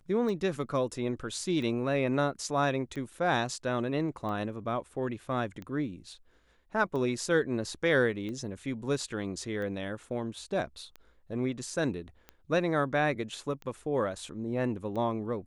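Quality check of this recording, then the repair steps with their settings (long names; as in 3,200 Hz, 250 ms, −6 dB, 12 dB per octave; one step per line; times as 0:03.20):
scratch tick 45 rpm −28 dBFS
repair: click removal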